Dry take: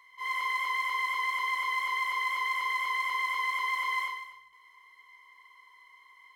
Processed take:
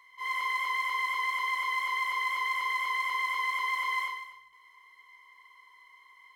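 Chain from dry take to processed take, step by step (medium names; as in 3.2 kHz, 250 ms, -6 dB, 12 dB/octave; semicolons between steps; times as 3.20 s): 1.33–1.97 s: high-pass 160 Hz 6 dB/octave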